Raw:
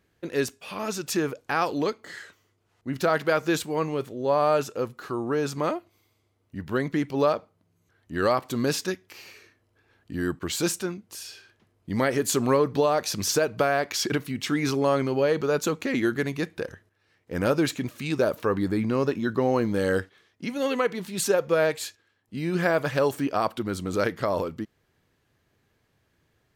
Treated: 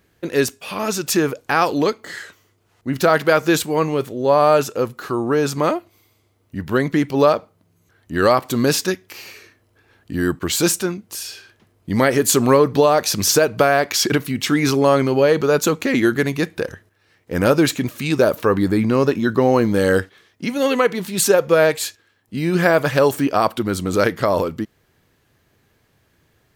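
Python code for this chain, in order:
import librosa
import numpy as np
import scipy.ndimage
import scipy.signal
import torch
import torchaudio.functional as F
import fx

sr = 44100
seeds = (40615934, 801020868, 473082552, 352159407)

y = fx.high_shelf(x, sr, hz=11000.0, db=6.5)
y = y * 10.0 ** (8.0 / 20.0)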